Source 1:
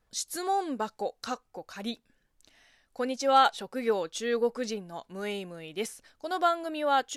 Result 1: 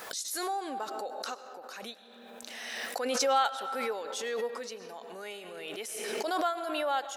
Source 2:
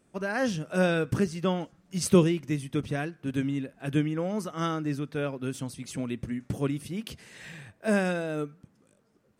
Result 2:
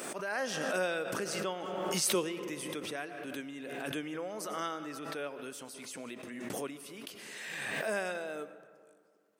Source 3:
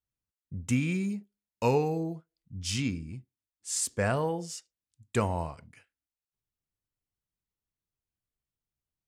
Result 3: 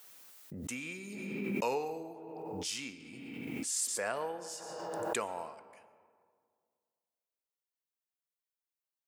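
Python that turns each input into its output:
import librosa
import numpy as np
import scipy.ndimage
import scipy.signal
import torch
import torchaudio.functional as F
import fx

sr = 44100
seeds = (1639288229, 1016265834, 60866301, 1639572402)

y = scipy.signal.sosfilt(scipy.signal.butter(2, 460.0, 'highpass', fs=sr, output='sos'), x)
y = fx.high_shelf(y, sr, hz=12000.0, db=7.5)
y = fx.rev_freeverb(y, sr, rt60_s=2.0, hf_ratio=0.45, predelay_ms=65, drr_db=13.5)
y = fx.pre_swell(y, sr, db_per_s=24.0)
y = F.gain(torch.from_numpy(y), -5.5).numpy()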